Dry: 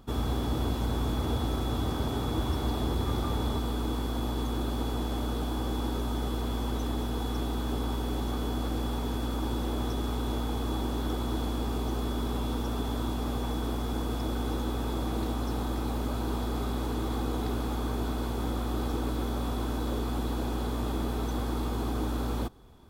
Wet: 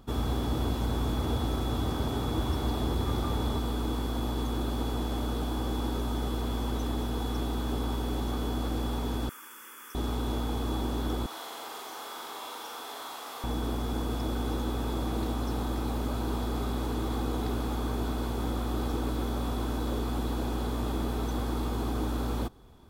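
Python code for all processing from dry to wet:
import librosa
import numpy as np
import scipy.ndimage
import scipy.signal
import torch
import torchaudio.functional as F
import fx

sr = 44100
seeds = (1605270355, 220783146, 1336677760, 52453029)

y = fx.chain(x, sr, fx.highpass(hz=1300.0, slope=12),
    fx.high_shelf(hz=7900.0, db=5.5),
    fx.fixed_phaser(hz=1700.0, stages=4), at=(9.29, 9.95))
y = fx.chain(y, sr, fx.highpass(hz=870.0, slope=12),
    fx.room_flutter(wall_m=7.4, rt60_s=0.64),
    fx.transformer_sat(knee_hz=470.0), at=(11.26, 13.44))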